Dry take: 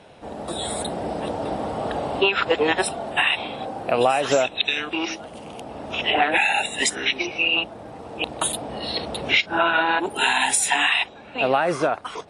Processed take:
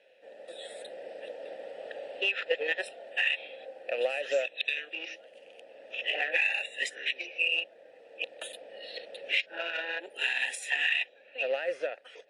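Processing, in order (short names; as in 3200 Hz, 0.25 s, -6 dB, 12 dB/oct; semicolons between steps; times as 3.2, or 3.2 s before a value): added harmonics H 7 -27 dB, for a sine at -4.5 dBFS; vowel filter e; tilt +3.5 dB/oct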